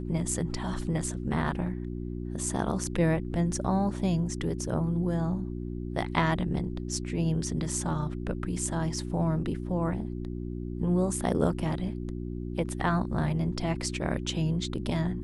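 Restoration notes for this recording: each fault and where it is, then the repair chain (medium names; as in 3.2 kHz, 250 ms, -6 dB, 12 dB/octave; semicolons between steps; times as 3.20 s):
hum 60 Hz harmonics 6 -35 dBFS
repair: de-hum 60 Hz, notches 6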